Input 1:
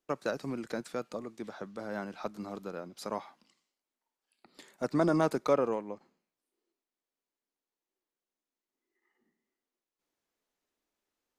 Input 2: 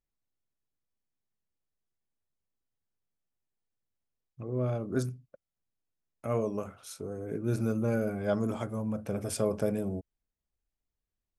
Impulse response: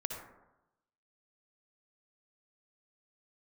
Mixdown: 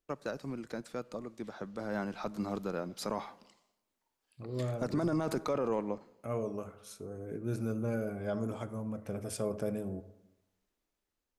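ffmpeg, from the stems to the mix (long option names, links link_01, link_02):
-filter_complex "[0:a]lowshelf=frequency=110:gain=11,dynaudnorm=framelen=780:gausssize=5:maxgain=10dB,volume=-6dB,asplit=2[link_01][link_02];[link_02]volume=-21.5dB[link_03];[1:a]volume=-7dB,asplit=2[link_04][link_05];[link_05]volume=-11dB[link_06];[2:a]atrim=start_sample=2205[link_07];[link_03][link_06]amix=inputs=2:normalize=0[link_08];[link_08][link_07]afir=irnorm=-1:irlink=0[link_09];[link_01][link_04][link_09]amix=inputs=3:normalize=0,alimiter=limit=-23.5dB:level=0:latency=1:release=14"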